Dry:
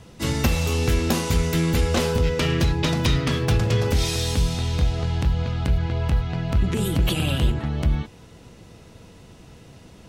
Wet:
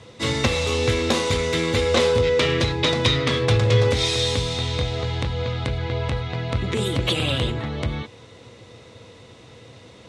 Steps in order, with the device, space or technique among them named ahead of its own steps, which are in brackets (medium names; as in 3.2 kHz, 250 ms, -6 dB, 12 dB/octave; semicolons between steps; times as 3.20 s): car door speaker (cabinet simulation 100–9300 Hz, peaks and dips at 110 Hz +7 dB, 170 Hz -9 dB, 500 Hz +8 dB, 1.1 kHz +5 dB, 2.1 kHz +7 dB, 3.7 kHz +9 dB)